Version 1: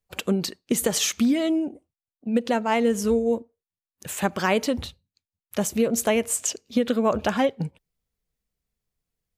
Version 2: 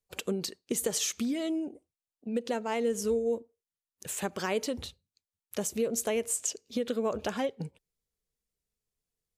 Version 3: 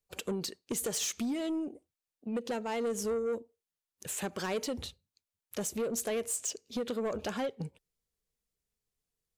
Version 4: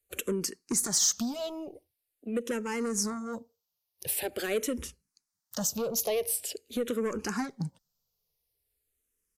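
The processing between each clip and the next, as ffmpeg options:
ffmpeg -i in.wav -af "equalizer=frequency=7900:width_type=o:width=2.1:gain=7,acompressor=threshold=-27dB:ratio=1.5,equalizer=frequency=430:width_type=o:width=0.62:gain=6.5,volume=-8dB" out.wav
ffmpeg -i in.wav -af "asoftclip=type=tanh:threshold=-27.5dB" out.wav
ffmpeg -i in.wav -filter_complex "[0:a]acrossover=split=440[link_01][link_02];[link_02]aexciter=amount=2:drive=4.3:freq=4600[link_03];[link_01][link_03]amix=inputs=2:normalize=0,aresample=32000,aresample=44100,asplit=2[link_04][link_05];[link_05]afreqshift=-0.45[link_06];[link_04][link_06]amix=inputs=2:normalize=1,volume=5.5dB" out.wav

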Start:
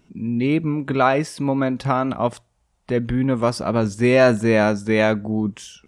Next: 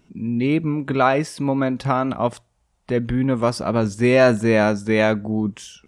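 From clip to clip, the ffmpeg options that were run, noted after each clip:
ffmpeg -i in.wav -af anull out.wav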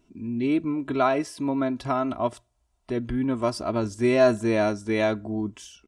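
ffmpeg -i in.wav -af "equalizer=frequency=1900:width_type=o:width=0.77:gain=-3.5,aecho=1:1:3:0.62,volume=-6.5dB" out.wav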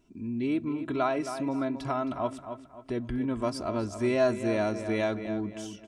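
ffmpeg -i in.wav -filter_complex "[0:a]asplit=2[link_01][link_02];[link_02]adelay=267,lowpass=frequency=4000:poles=1,volume=-11dB,asplit=2[link_03][link_04];[link_04]adelay=267,lowpass=frequency=4000:poles=1,volume=0.34,asplit=2[link_05][link_06];[link_06]adelay=267,lowpass=frequency=4000:poles=1,volume=0.34,asplit=2[link_07][link_08];[link_08]adelay=267,lowpass=frequency=4000:poles=1,volume=0.34[link_09];[link_01][link_03][link_05][link_07][link_09]amix=inputs=5:normalize=0,asplit=2[link_10][link_11];[link_11]acompressor=threshold=-30dB:ratio=6,volume=-1dB[link_12];[link_10][link_12]amix=inputs=2:normalize=0,volume=-7.5dB" out.wav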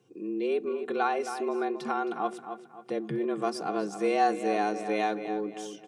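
ffmpeg -i in.wav -af "afreqshift=100" out.wav

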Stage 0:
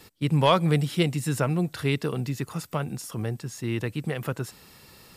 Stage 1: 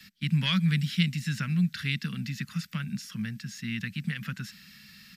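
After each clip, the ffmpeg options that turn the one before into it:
ffmpeg -i in.wav -filter_complex "[0:a]firequalizer=gain_entry='entry(120,0);entry(200,15);entry(330,-16);entry(500,-17);entry(780,-16);entry(1600,12);entry(3300,10);entry(5400,10);entry(8600,-1);entry(13000,4)':delay=0.05:min_phase=1,acrossover=split=240|3000[link_01][link_02][link_03];[link_02]acompressor=threshold=-31dB:ratio=1.5[link_04];[link_01][link_04][link_03]amix=inputs=3:normalize=0,acrossover=split=220|7000[link_05][link_06][link_07];[link_07]alimiter=level_in=12dB:limit=-24dB:level=0:latency=1,volume=-12dB[link_08];[link_05][link_06][link_08]amix=inputs=3:normalize=0,volume=-8dB" out.wav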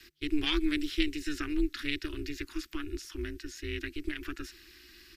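ffmpeg -i in.wav -af "aeval=exprs='val(0)*sin(2*PI*150*n/s)':channel_layout=same" out.wav

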